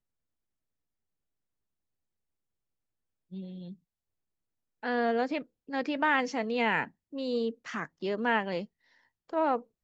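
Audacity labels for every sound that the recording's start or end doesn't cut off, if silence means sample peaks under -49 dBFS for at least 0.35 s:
3.320000	3.740000	sound
4.830000	8.650000	sound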